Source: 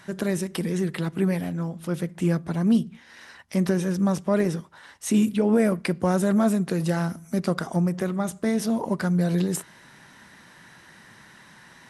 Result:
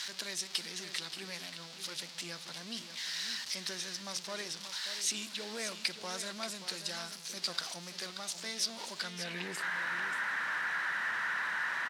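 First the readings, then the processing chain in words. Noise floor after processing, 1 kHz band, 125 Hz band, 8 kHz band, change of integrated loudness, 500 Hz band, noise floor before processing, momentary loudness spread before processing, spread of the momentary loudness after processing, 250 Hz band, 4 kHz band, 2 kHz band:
−49 dBFS, −7.5 dB, −27.5 dB, −0.5 dB, −11.5 dB, −20.0 dB, −51 dBFS, 9 LU, 8 LU, −27.0 dB, +6.5 dB, +3.0 dB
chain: converter with a step at zero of −30 dBFS
band-pass filter sweep 4,500 Hz → 1,500 Hz, 0:08.95–0:09.68
single-tap delay 581 ms −10 dB
level +5 dB

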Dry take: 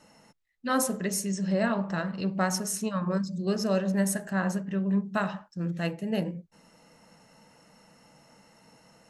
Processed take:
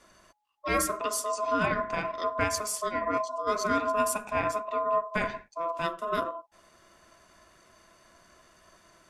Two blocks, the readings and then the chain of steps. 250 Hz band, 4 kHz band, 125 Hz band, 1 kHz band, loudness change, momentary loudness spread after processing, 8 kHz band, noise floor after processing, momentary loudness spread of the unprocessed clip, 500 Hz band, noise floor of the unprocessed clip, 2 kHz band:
−10.0 dB, −0.5 dB, −11.0 dB, +7.0 dB, −0.5 dB, 5 LU, −1.0 dB, −62 dBFS, 5 LU, +2.0 dB, −61 dBFS, +2.0 dB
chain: ring modulation 840 Hz
level +2 dB

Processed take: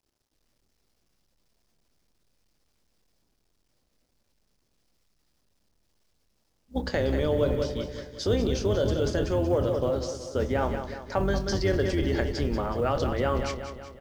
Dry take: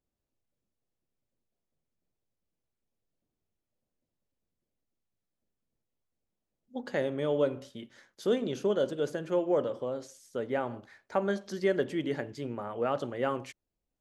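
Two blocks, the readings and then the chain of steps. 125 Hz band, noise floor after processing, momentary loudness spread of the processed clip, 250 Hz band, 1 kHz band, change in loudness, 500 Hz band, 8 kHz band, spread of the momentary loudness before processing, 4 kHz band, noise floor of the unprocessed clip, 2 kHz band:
+13.0 dB, −73 dBFS, 8 LU, +5.0 dB, +4.5 dB, +4.5 dB, +3.5 dB, can't be measured, 14 LU, +8.0 dB, below −85 dBFS, +4.5 dB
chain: sub-octave generator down 2 octaves, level +3 dB
Bessel low-pass filter 6,800 Hz, order 6
parametric band 5,100 Hz +11 dB 0.65 octaves
mains-hum notches 60/120/180 Hz
tape wow and flutter 26 cents
on a send: repeating echo 186 ms, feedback 52%, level −10.5 dB
on the sum: log-companded quantiser 8 bits
double-tracking delay 27 ms −12 dB
in parallel at −2 dB: compressor whose output falls as the input rises −31 dBFS, ratio −0.5

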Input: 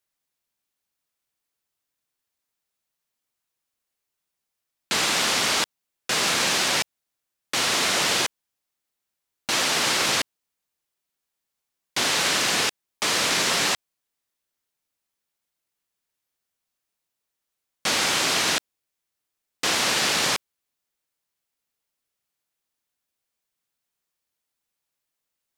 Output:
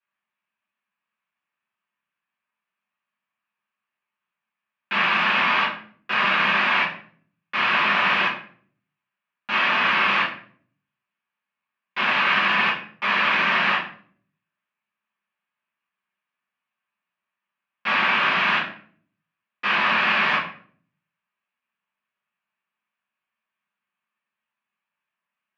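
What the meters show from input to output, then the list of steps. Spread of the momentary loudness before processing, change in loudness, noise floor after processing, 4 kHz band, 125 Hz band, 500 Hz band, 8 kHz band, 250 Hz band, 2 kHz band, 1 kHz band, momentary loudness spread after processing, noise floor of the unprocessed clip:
8 LU, +1.5 dB, below −85 dBFS, −4.0 dB, −0.5 dB, −2.5 dB, below −25 dB, 0.0 dB, +6.5 dB, +6.5 dB, 9 LU, −83 dBFS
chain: loudspeaker in its box 200–3,000 Hz, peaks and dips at 200 Hz +6 dB, 300 Hz −6 dB, 450 Hz −9 dB, 1,100 Hz +9 dB, 1,700 Hz +8 dB, 2,600 Hz +7 dB
rectangular room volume 53 cubic metres, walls mixed, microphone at 1.8 metres
level −9 dB

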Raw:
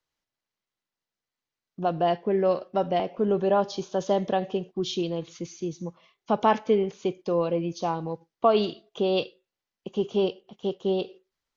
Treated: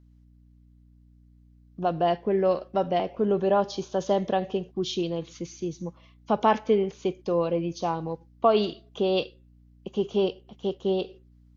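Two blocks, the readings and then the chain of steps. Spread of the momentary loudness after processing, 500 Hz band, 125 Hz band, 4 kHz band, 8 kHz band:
11 LU, 0.0 dB, 0.0 dB, 0.0 dB, can't be measured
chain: mains hum 60 Hz, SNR 28 dB

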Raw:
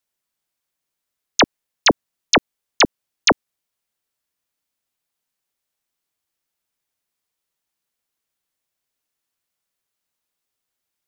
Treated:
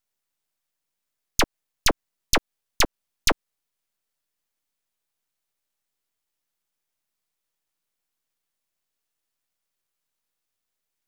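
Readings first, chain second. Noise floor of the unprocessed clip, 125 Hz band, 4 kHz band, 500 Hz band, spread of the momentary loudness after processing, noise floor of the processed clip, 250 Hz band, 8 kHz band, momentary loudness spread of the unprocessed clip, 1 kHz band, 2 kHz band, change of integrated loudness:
−82 dBFS, −3.5 dB, −6.5 dB, −8.5 dB, 4 LU, −83 dBFS, −9.5 dB, −3.0 dB, 5 LU, −8.5 dB, −8.0 dB, −6.5 dB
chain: downward compressor, threshold −15 dBFS, peak gain reduction 5.5 dB
half-wave rectification
level +2 dB

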